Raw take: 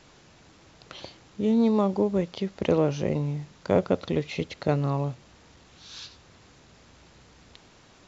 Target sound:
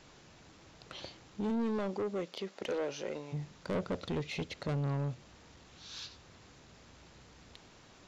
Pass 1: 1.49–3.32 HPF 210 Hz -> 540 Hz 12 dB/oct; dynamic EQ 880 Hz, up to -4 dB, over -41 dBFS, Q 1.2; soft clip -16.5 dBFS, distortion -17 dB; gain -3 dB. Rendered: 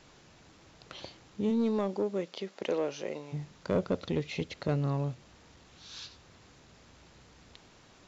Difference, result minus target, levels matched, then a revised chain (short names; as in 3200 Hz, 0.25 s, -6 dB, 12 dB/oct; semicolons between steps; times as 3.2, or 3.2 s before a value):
soft clip: distortion -9 dB
1.49–3.32 HPF 210 Hz -> 540 Hz 12 dB/oct; dynamic EQ 880 Hz, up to -4 dB, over -41 dBFS, Q 1.2; soft clip -26.5 dBFS, distortion -8 dB; gain -3 dB